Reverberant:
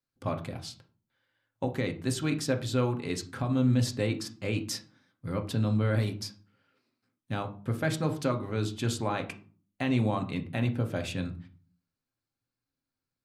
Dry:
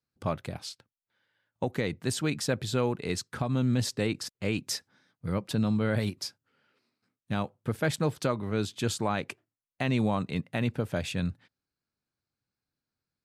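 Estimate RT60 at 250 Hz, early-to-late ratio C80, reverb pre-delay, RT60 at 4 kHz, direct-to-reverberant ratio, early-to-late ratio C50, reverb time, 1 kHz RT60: 0.60 s, 18.0 dB, 3 ms, 0.25 s, 5.0 dB, 13.0 dB, 0.40 s, 0.40 s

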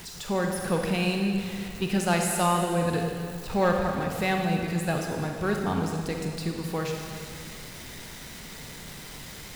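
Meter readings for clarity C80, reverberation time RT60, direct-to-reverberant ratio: 4.0 dB, 2.2 s, 2.0 dB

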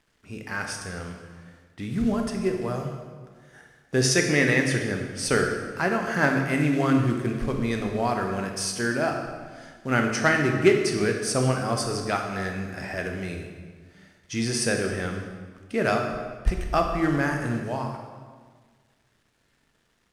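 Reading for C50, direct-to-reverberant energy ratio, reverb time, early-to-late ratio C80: 5.0 dB, 3.0 dB, 1.6 s, 6.5 dB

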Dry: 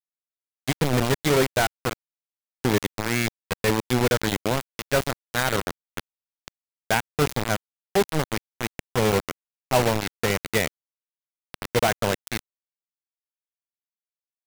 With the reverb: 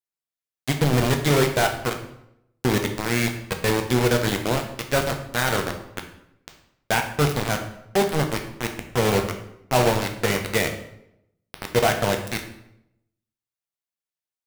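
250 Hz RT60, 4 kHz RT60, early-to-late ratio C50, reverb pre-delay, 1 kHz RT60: 0.90 s, 0.60 s, 8.5 dB, 8 ms, 0.75 s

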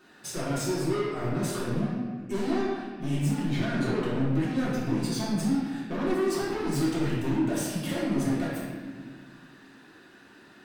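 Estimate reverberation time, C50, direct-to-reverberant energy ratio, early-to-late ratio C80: 1.8 s, -1.0 dB, -8.5 dB, 1.0 dB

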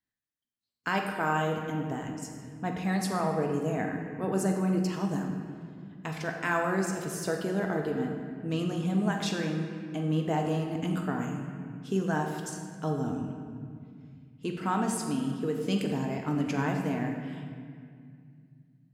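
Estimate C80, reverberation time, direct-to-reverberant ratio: 5.0 dB, 2.2 s, 2.0 dB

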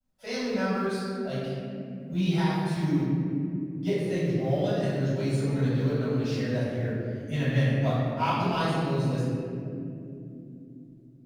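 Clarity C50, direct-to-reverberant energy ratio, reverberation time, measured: -2.5 dB, -11.5 dB, not exponential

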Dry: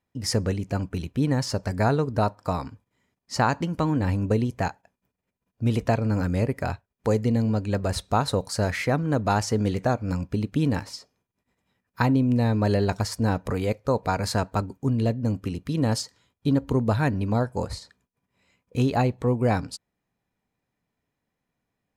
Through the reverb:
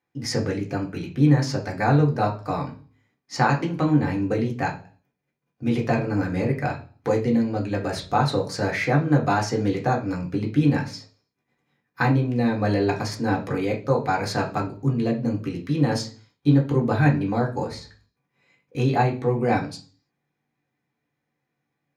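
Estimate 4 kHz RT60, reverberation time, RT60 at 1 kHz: 0.45 s, 0.40 s, 0.35 s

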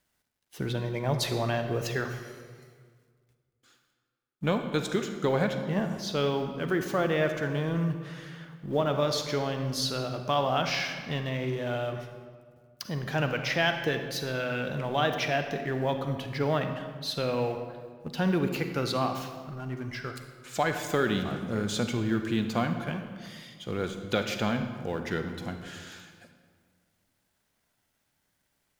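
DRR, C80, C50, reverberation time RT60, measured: 6.5 dB, 8.5 dB, 7.5 dB, 1.8 s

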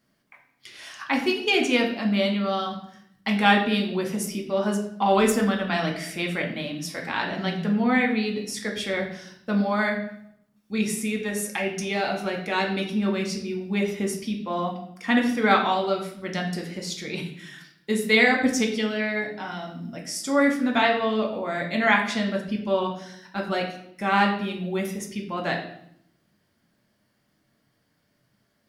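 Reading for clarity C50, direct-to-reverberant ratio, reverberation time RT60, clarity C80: 7.5 dB, 0.5 dB, 0.70 s, 10.5 dB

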